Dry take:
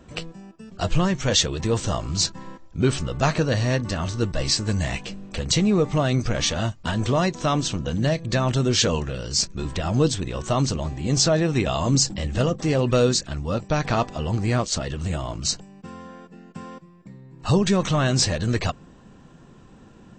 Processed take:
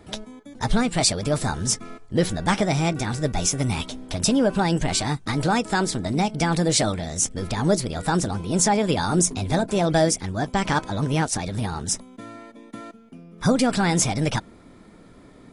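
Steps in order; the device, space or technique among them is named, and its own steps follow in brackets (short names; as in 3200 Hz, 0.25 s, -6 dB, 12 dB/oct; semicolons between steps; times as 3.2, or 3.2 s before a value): nightcore (varispeed +30%)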